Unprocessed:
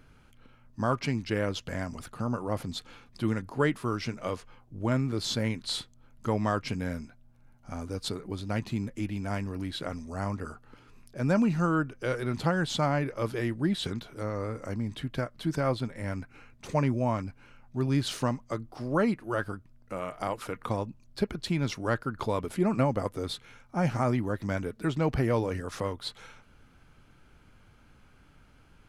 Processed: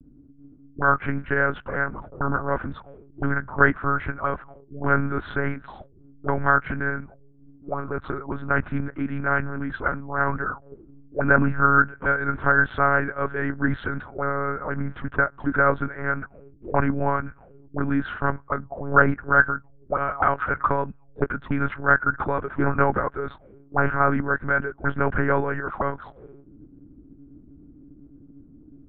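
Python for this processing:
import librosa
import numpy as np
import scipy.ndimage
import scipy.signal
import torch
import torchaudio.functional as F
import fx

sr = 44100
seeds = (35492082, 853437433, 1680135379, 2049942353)

p1 = fx.rider(x, sr, range_db=10, speed_s=2.0)
p2 = x + F.gain(torch.from_numpy(p1), 2.5).numpy()
p3 = fx.lpc_monotone(p2, sr, seeds[0], pitch_hz=140.0, order=8)
p4 = fx.envelope_lowpass(p3, sr, base_hz=250.0, top_hz=1500.0, q=7.4, full_db=-22.5, direction='up')
y = F.gain(torch.from_numpy(p4), -4.0).numpy()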